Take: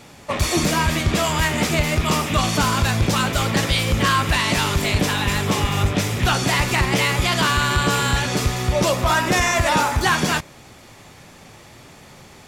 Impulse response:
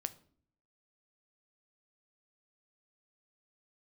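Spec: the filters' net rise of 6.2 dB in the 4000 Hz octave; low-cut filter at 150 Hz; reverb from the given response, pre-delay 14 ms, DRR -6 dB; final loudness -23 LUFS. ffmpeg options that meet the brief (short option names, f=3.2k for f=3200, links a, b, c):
-filter_complex "[0:a]highpass=150,equalizer=f=4k:t=o:g=8,asplit=2[a][b];[1:a]atrim=start_sample=2205,adelay=14[c];[b][c]afir=irnorm=-1:irlink=0,volume=7dB[d];[a][d]amix=inputs=2:normalize=0,volume=-12.5dB"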